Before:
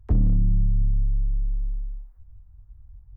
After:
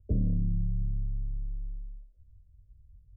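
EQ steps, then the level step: rippled Chebyshev low-pass 630 Hz, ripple 3 dB; tilt EQ +1.5 dB/octave; 0.0 dB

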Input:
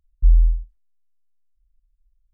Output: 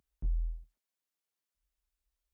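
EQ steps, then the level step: high-pass 160 Hz 12 dB/octave; +4.5 dB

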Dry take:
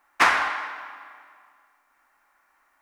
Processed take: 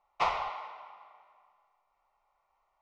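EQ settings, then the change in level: distance through air 210 m; bass shelf 78 Hz +6.5 dB; static phaser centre 680 Hz, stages 4; -3.5 dB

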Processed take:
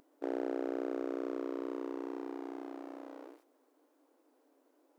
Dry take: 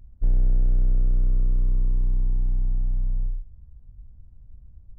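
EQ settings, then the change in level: brick-wall FIR high-pass 270 Hz; +11.5 dB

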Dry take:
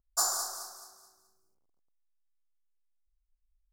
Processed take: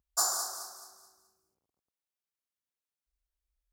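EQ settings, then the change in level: high-pass 51 Hz; 0.0 dB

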